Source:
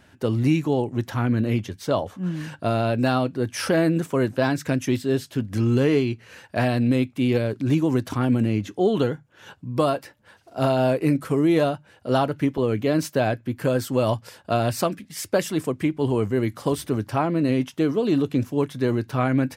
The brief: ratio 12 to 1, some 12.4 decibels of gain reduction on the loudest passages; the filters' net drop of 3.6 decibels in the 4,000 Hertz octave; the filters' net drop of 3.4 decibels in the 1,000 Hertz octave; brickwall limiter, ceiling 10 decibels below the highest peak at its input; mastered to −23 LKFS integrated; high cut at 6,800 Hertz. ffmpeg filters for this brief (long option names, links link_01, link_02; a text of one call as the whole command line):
ffmpeg -i in.wav -af "lowpass=6800,equalizer=frequency=1000:width_type=o:gain=-5,equalizer=frequency=4000:width_type=o:gain=-4,acompressor=threshold=-29dB:ratio=12,volume=14.5dB,alimiter=limit=-12.5dB:level=0:latency=1" out.wav